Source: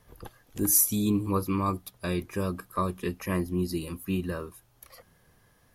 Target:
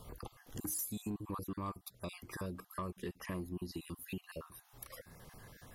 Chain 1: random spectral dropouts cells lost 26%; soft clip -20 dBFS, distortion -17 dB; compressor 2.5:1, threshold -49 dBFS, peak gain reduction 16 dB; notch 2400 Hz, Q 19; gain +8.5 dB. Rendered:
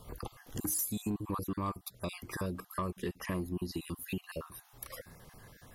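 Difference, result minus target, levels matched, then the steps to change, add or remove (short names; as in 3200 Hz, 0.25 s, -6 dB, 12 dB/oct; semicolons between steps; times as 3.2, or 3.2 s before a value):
compressor: peak gain reduction -5.5 dB
change: compressor 2.5:1, threshold -58 dBFS, peak gain reduction 21.5 dB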